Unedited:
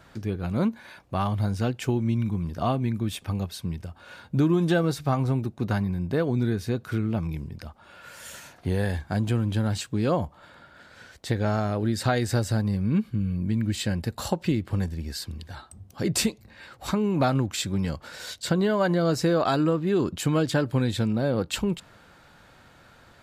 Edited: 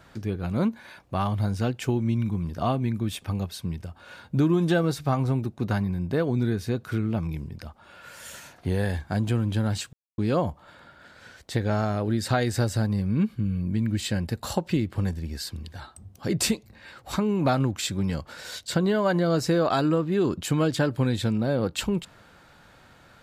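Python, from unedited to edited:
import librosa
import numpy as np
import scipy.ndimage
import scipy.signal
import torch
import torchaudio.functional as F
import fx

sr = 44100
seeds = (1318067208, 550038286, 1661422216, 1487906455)

y = fx.edit(x, sr, fx.insert_silence(at_s=9.93, length_s=0.25), tone=tone)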